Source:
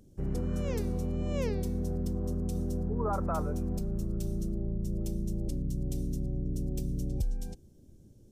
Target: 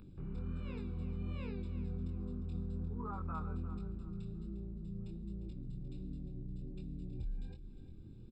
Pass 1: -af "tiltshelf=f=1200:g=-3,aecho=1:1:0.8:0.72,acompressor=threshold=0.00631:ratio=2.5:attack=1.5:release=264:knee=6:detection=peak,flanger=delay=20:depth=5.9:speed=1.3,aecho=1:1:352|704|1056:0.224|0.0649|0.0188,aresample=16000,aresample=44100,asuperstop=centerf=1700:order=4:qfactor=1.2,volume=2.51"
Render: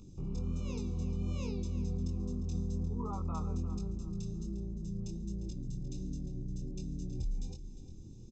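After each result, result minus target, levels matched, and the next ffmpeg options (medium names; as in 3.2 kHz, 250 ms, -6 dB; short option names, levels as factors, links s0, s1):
2 kHz band -6.5 dB; compression: peak gain reduction -5 dB
-af "tiltshelf=f=1200:g=-3,aecho=1:1:0.8:0.72,acompressor=threshold=0.00631:ratio=2.5:attack=1.5:release=264:knee=6:detection=peak,flanger=delay=20:depth=5.9:speed=1.3,aecho=1:1:352|704|1056:0.224|0.0649|0.0188,aresample=16000,aresample=44100,asuperstop=centerf=6200:order=4:qfactor=1.2,volume=2.51"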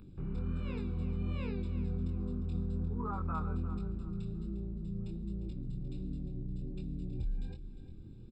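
compression: peak gain reduction -5 dB
-af "tiltshelf=f=1200:g=-3,aecho=1:1:0.8:0.72,acompressor=threshold=0.00251:ratio=2.5:attack=1.5:release=264:knee=6:detection=peak,flanger=delay=20:depth=5.9:speed=1.3,aecho=1:1:352|704|1056:0.224|0.0649|0.0188,aresample=16000,aresample=44100,asuperstop=centerf=6200:order=4:qfactor=1.2,volume=2.51"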